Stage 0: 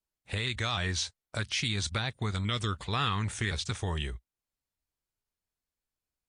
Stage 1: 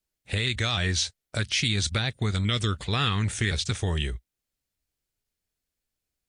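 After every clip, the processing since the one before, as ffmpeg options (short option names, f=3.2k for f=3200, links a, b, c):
-af "equalizer=f=1k:w=1.6:g=-7.5,volume=6dB"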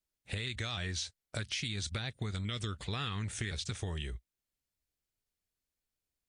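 -af "acompressor=threshold=-28dB:ratio=6,volume=-5.5dB"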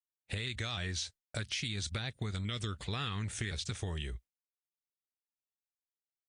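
-af "agate=range=-33dB:threshold=-47dB:ratio=3:detection=peak"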